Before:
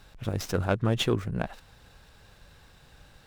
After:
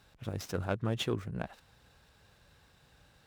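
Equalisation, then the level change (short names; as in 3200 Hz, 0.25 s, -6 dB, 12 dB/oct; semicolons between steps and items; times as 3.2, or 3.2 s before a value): HPF 55 Hz; -7.0 dB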